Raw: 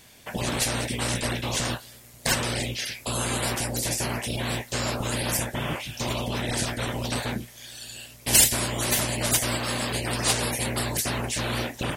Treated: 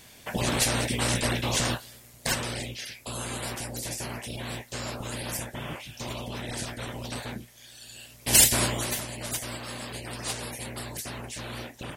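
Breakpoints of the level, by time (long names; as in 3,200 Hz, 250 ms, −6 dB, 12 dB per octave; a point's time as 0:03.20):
0:01.64 +1 dB
0:02.77 −7 dB
0:07.79 −7 dB
0:08.64 +2.5 dB
0:09.02 −9.5 dB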